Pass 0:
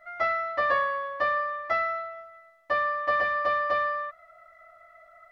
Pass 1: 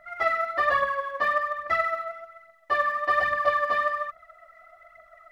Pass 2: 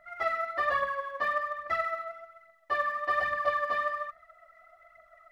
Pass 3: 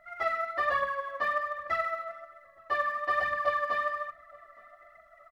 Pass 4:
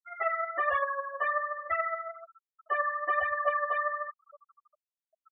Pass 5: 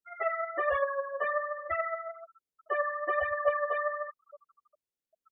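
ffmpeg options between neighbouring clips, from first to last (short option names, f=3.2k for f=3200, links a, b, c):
-af "aphaser=in_gain=1:out_gain=1:delay=4.7:decay=0.58:speed=1.2:type=triangular"
-af "bandreject=f=153:t=h:w=4,bandreject=f=306:t=h:w=4,bandreject=f=459:t=h:w=4,bandreject=f=612:t=h:w=4,bandreject=f=765:t=h:w=4,bandreject=f=918:t=h:w=4,bandreject=f=1.071k:t=h:w=4,bandreject=f=1.224k:t=h:w=4,bandreject=f=1.377k:t=h:w=4,bandreject=f=1.53k:t=h:w=4,bandreject=f=1.683k:t=h:w=4,bandreject=f=1.836k:t=h:w=4,bandreject=f=1.989k:t=h:w=4,bandreject=f=2.142k:t=h:w=4,bandreject=f=2.295k:t=h:w=4,bandreject=f=2.448k:t=h:w=4,bandreject=f=2.601k:t=h:w=4,bandreject=f=2.754k:t=h:w=4,bandreject=f=2.907k:t=h:w=4,bandreject=f=3.06k:t=h:w=4,bandreject=f=3.213k:t=h:w=4,bandreject=f=3.366k:t=h:w=4,bandreject=f=3.519k:t=h:w=4,bandreject=f=3.672k:t=h:w=4,bandreject=f=3.825k:t=h:w=4,bandreject=f=3.978k:t=h:w=4,bandreject=f=4.131k:t=h:w=4,bandreject=f=4.284k:t=h:w=4,bandreject=f=4.437k:t=h:w=4,bandreject=f=4.59k:t=h:w=4,bandreject=f=4.743k:t=h:w=4,bandreject=f=4.896k:t=h:w=4,bandreject=f=5.049k:t=h:w=4,bandreject=f=5.202k:t=h:w=4,bandreject=f=5.355k:t=h:w=4,bandreject=f=5.508k:t=h:w=4,volume=-5dB"
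-filter_complex "[0:a]asplit=2[a][b];[b]adelay=868,lowpass=f=990:p=1,volume=-22dB,asplit=2[c][d];[d]adelay=868,lowpass=f=990:p=1,volume=0.46,asplit=2[e][f];[f]adelay=868,lowpass=f=990:p=1,volume=0.46[g];[a][c][e][g]amix=inputs=4:normalize=0"
-af "afftfilt=real='re*gte(hypot(re,im),0.0224)':imag='im*gte(hypot(re,im),0.0224)':win_size=1024:overlap=0.75"
-af "lowshelf=f=640:t=q:w=1.5:g=7.5,volume=-1.5dB"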